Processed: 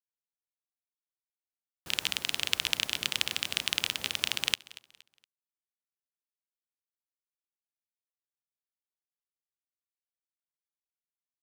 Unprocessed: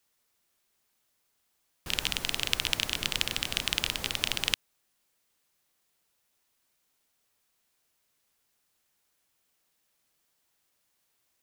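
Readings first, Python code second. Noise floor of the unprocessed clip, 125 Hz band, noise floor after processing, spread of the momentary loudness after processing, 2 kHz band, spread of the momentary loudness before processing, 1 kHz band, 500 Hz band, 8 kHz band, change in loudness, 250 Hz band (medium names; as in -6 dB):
-75 dBFS, -7.5 dB, under -85 dBFS, 3 LU, -0.5 dB, 3 LU, -2.5 dB, -4.5 dB, -0.5 dB, -0.5 dB, -5.5 dB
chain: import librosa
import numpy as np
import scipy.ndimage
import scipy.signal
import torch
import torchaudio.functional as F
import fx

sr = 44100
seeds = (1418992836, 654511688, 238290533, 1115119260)

p1 = scipy.signal.sosfilt(scipy.signal.butter(2, 95.0, 'highpass', fs=sr, output='sos'), x)
p2 = np.sign(p1) * np.maximum(np.abs(p1) - 10.0 ** (-45.0 / 20.0), 0.0)
y = p2 + fx.echo_feedback(p2, sr, ms=234, feedback_pct=33, wet_db=-20.5, dry=0)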